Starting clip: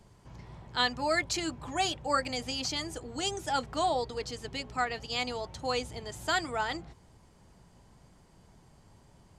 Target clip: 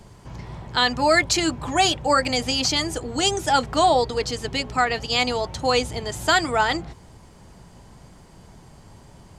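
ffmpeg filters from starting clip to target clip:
ffmpeg -i in.wav -af "alimiter=level_in=18.5dB:limit=-1dB:release=50:level=0:latency=1,volume=-7dB" out.wav

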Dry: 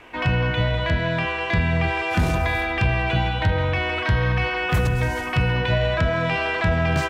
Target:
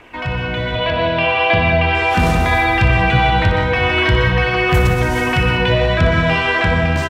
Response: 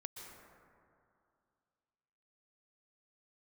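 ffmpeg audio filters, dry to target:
-filter_complex "[0:a]asplit=2[link_01][link_02];[link_02]alimiter=limit=-21.5dB:level=0:latency=1,volume=2.5dB[link_03];[link_01][link_03]amix=inputs=2:normalize=0,aphaser=in_gain=1:out_gain=1:delay=4.5:decay=0.26:speed=0.66:type=triangular,asettb=1/sr,asplit=3[link_04][link_05][link_06];[link_04]atrim=end=0.754[link_07];[link_05]atrim=start=0.75:end=1.95,asetpts=PTS-STARTPTS,afade=type=in:duration=0.004:curve=qsin,afade=type=out:start_time=1.196:duration=0.004:curve=qsin,highpass=100,equalizer=frequency=180:width_type=q:width=4:gain=-7,equalizer=frequency=350:width_type=q:width=4:gain=-3,equalizer=frequency=650:width_type=q:width=4:gain=7,equalizer=frequency=1900:width_type=q:width=4:gain=-5,equalizer=frequency=2800:width_type=q:width=4:gain=8,lowpass=frequency=4900:width=0.5412,lowpass=frequency=4900:width=1.3066[link_08];[link_06]atrim=start=1.946[link_09];[link_07][link_08]acrossfade=duration=0.004:curve1=hsin:curve2=qsin[link_10];[link_10][link_09]acrossfade=duration=0.004:curve1=qsin:curve2=hsin,aecho=1:1:60|120|180|240|300|360:0.316|0.168|0.0888|0.0471|0.025|0.0132[link_11];[1:a]atrim=start_sample=2205,afade=type=out:start_time=0.26:duration=0.01,atrim=end_sample=11907[link_12];[link_11][link_12]afir=irnorm=-1:irlink=0,dynaudnorm=framelen=140:gausssize=11:maxgain=9.5dB"

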